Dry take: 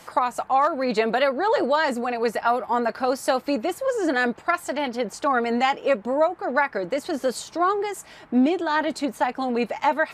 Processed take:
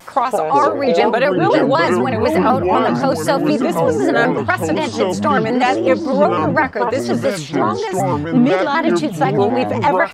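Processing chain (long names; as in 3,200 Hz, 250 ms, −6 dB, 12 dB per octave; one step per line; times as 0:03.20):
0:07.32–0:07.79: ring modulation 130 Hz → 38 Hz
delay with pitch and tempo change per echo 83 ms, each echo −7 semitones, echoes 2
pitch modulation by a square or saw wave square 4 Hz, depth 100 cents
level +5.5 dB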